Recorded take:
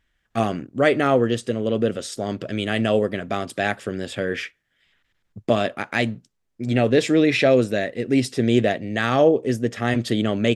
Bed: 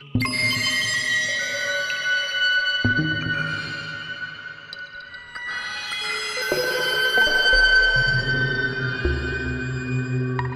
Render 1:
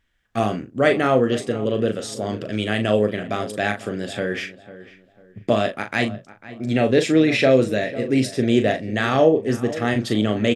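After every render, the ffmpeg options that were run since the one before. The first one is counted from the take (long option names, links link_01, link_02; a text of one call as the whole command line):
ffmpeg -i in.wav -filter_complex "[0:a]asplit=2[link_01][link_02];[link_02]adelay=38,volume=-8dB[link_03];[link_01][link_03]amix=inputs=2:normalize=0,asplit=2[link_04][link_05];[link_05]adelay=497,lowpass=frequency=1800:poles=1,volume=-15.5dB,asplit=2[link_06][link_07];[link_07]adelay=497,lowpass=frequency=1800:poles=1,volume=0.32,asplit=2[link_08][link_09];[link_09]adelay=497,lowpass=frequency=1800:poles=1,volume=0.32[link_10];[link_04][link_06][link_08][link_10]amix=inputs=4:normalize=0" out.wav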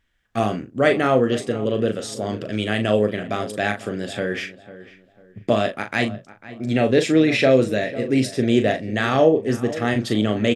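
ffmpeg -i in.wav -af anull out.wav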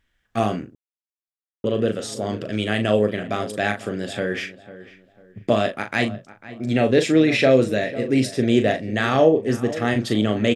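ffmpeg -i in.wav -filter_complex "[0:a]asplit=3[link_01][link_02][link_03];[link_01]atrim=end=0.75,asetpts=PTS-STARTPTS,afade=type=out:start_time=0.746:duration=0.004:curve=hsin[link_04];[link_02]atrim=start=0.75:end=1.64,asetpts=PTS-STARTPTS,volume=0[link_05];[link_03]atrim=start=1.64,asetpts=PTS-STARTPTS,afade=type=in:duration=0.004:curve=hsin[link_06];[link_04][link_05][link_06]concat=n=3:v=0:a=1" out.wav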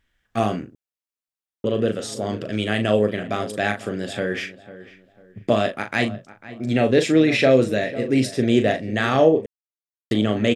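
ffmpeg -i in.wav -filter_complex "[0:a]asplit=3[link_01][link_02][link_03];[link_01]atrim=end=9.46,asetpts=PTS-STARTPTS,afade=type=out:start_time=9.456:duration=0.004:curve=hsin[link_04];[link_02]atrim=start=9.46:end=10.11,asetpts=PTS-STARTPTS,volume=0[link_05];[link_03]atrim=start=10.11,asetpts=PTS-STARTPTS,afade=type=in:duration=0.004:curve=hsin[link_06];[link_04][link_05][link_06]concat=n=3:v=0:a=1" out.wav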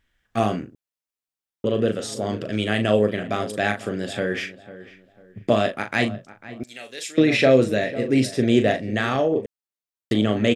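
ffmpeg -i in.wav -filter_complex "[0:a]asettb=1/sr,asplit=3[link_01][link_02][link_03];[link_01]atrim=end=6.634[link_04];[link_02]atrim=start=6.63:end=7.18,asetpts=PTS-STARTPTS,afade=type=in:duration=0.004:curve=qsin,afade=type=out:start_time=0.546:duration=0.004:curve=qsin,aderivative[link_05];[link_03]atrim=start=7.176[link_06];[link_04][link_05]acrossfade=duration=0.004:curve1=hsin:curve2=qsin[link_07];[link_07][link_06]acrossfade=duration=0.004:curve1=qsin:curve2=hsin,asettb=1/sr,asplit=3[link_08][link_09][link_10];[link_08]atrim=end=8.884[link_11];[link_09]atrim=start=8.88:end=9.36,asetpts=PTS-STARTPTS,afade=type=in:duration=0.004:curve=qsin,afade=type=out:start_time=0.476:duration=0.004:curve=qsin,acompressor=threshold=-16dB:ratio=6:attack=3.2:release=140:knee=1:detection=peak[link_12];[link_10]atrim=start=9.356[link_13];[link_11][link_12]acrossfade=duration=0.004:curve1=hsin:curve2=qsin[link_14];[link_14][link_13]acrossfade=duration=0.004:curve1=qsin:curve2=hsin" out.wav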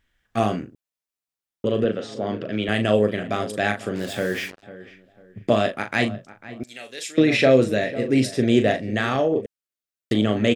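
ffmpeg -i in.wav -filter_complex "[0:a]asettb=1/sr,asplit=3[link_01][link_02][link_03];[link_01]atrim=end=1.844[link_04];[link_02]atrim=start=1.84:end=2.69,asetpts=PTS-STARTPTS,afade=type=in:duration=0.004:curve=qsin,afade=type=out:start_time=0.846:duration=0.004:curve=qsin,highpass=120,lowpass=3400[link_05];[link_03]atrim=start=2.686[link_06];[link_04][link_05]acrossfade=duration=0.004:curve1=hsin:curve2=qsin[link_07];[link_07][link_06]acrossfade=duration=0.004:curve1=qsin:curve2=hsin,asettb=1/sr,asplit=3[link_08][link_09][link_10];[link_08]atrim=end=3.954[link_11];[link_09]atrim=start=3.95:end=4.63,asetpts=PTS-STARTPTS,afade=type=in:duration=0.004:curve=qsin,afade=type=out:start_time=0.676:duration=0.004:curve=qsin,acrusher=bits=5:mix=0:aa=0.5[link_12];[link_10]atrim=start=4.626[link_13];[link_11][link_12]acrossfade=duration=0.004:curve1=hsin:curve2=qsin[link_14];[link_14][link_13]acrossfade=duration=0.004:curve1=qsin:curve2=hsin,asettb=1/sr,asplit=3[link_15][link_16][link_17];[link_15]atrim=end=9.414[link_18];[link_16]atrim=start=9.41:end=10.12,asetpts=PTS-STARTPTS,afade=type=in:duration=0.004:curve=qsin,afade=type=out:start_time=0.706:duration=0.004:curve=qsin,asuperstop=centerf=890:order=4:qfactor=2.3[link_19];[link_17]atrim=start=10.116[link_20];[link_18][link_19]acrossfade=duration=0.004:curve1=hsin:curve2=qsin[link_21];[link_21][link_20]acrossfade=duration=0.004:curve1=qsin:curve2=hsin" out.wav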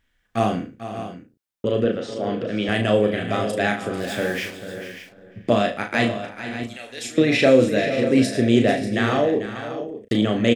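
ffmpeg -i in.wav -filter_complex "[0:a]asplit=2[link_01][link_02];[link_02]adelay=34,volume=-7.5dB[link_03];[link_01][link_03]amix=inputs=2:normalize=0,aecho=1:1:110|443|527|589:0.119|0.237|0.112|0.237" out.wav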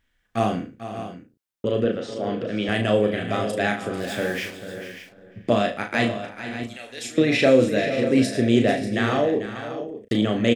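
ffmpeg -i in.wav -af "volume=-1.5dB" out.wav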